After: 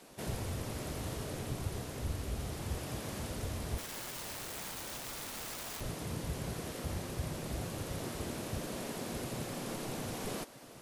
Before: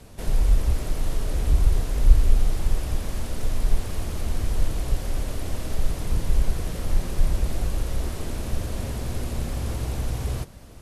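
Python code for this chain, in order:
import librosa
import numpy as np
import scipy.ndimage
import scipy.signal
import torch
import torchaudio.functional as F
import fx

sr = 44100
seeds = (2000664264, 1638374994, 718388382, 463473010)

y = fx.spec_gate(x, sr, threshold_db=-10, keep='weak')
y = fx.rider(y, sr, range_db=4, speed_s=0.5)
y = fx.overflow_wrap(y, sr, gain_db=33.0, at=(3.78, 5.81))
y = F.gain(torch.from_numpy(y), -5.0).numpy()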